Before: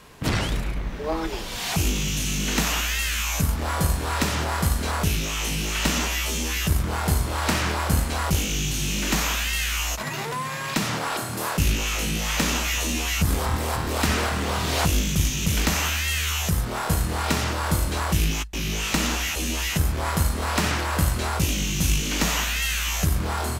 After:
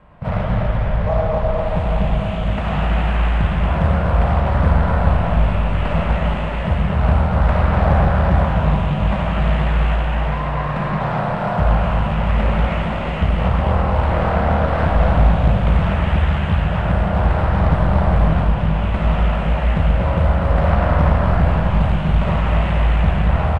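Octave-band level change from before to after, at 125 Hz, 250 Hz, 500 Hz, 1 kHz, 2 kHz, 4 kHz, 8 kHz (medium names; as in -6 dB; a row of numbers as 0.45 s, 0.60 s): +9.5 dB, +7.0 dB, +10.0 dB, +7.5 dB, 0.0 dB, -8.5 dB, under -25 dB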